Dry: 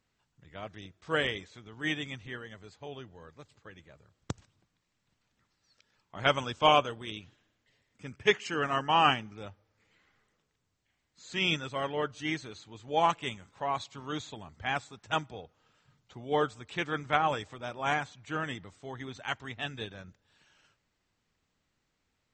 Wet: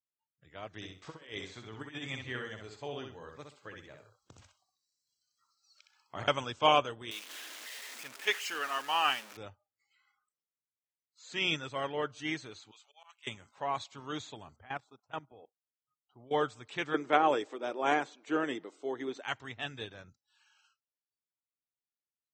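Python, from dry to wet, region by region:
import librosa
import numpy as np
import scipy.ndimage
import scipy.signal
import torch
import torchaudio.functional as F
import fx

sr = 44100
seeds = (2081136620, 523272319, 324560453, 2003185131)

y = fx.chain(x, sr, fx.over_compress(threshold_db=-39.0, ratio=-0.5),
    fx.echo_feedback(ms=64, feedback_pct=26, wet_db=-5.0), at=(0.75, 6.28))
y = fx.chain(y, sr, fx.zero_step(step_db=-35.0),
    fx.highpass(hz=1300.0, slope=6), at=(7.11, 9.37))
y = fx.chain(y, sr, fx.highpass(hz=1500.0, slope=12),
    fx.auto_swell(attack_ms=740.0), at=(12.71, 13.27))
y = fx.chain(y, sr, fx.lowpass(hz=1700.0, slope=6),
    fx.transient(attack_db=-5, sustain_db=-1),
    fx.level_steps(step_db=17), at=(14.56, 16.31))
y = fx.chain(y, sr, fx.highpass(hz=240.0, slope=12),
    fx.peak_eq(hz=360.0, db=12.5, octaves=1.4), at=(16.94, 19.21))
y = fx.noise_reduce_blind(y, sr, reduce_db=27)
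y = scipy.signal.sosfilt(scipy.signal.butter(2, 97.0, 'highpass', fs=sr, output='sos'), y)
y = fx.peak_eq(y, sr, hz=190.0, db=-7.0, octaves=0.47)
y = y * librosa.db_to_amplitude(-2.0)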